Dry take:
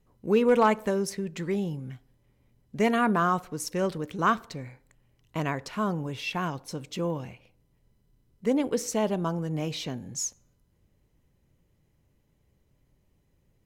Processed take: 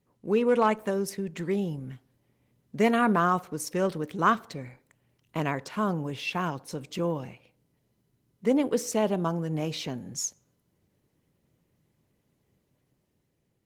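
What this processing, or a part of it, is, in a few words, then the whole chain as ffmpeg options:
video call: -af "highpass=120,dynaudnorm=framelen=430:gausssize=5:maxgain=3.5dB,volume=-2dB" -ar 48000 -c:a libopus -b:a 20k

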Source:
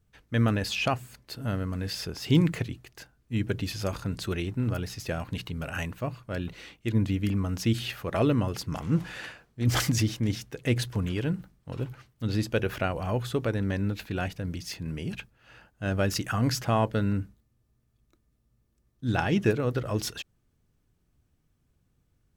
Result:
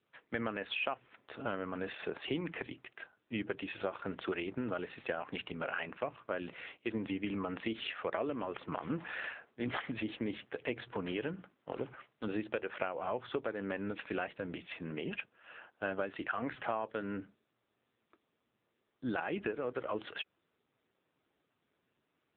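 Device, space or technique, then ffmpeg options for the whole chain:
voicemail: -af "highpass=400,lowpass=2900,acompressor=threshold=-37dB:ratio=8,volume=5.5dB" -ar 8000 -c:a libopencore_amrnb -b:a 6700

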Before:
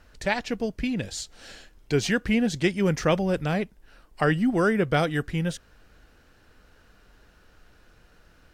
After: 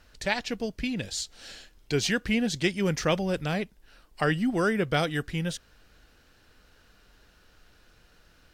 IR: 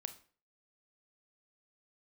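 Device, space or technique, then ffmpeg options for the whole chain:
presence and air boost: -af "equalizer=frequency=4000:width_type=o:width=1.6:gain=5.5,highshelf=frequency=9100:gain=6,volume=-3.5dB"

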